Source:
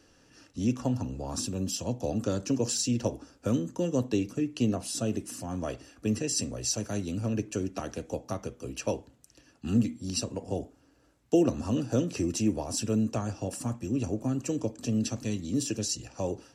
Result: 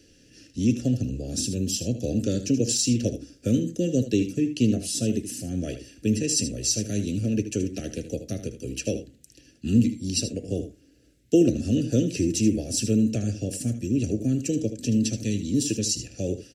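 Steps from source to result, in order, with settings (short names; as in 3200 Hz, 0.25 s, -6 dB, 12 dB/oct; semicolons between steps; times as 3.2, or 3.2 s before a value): Butterworth band-stop 1000 Hz, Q 0.63; echo 77 ms -11 dB; gain +5.5 dB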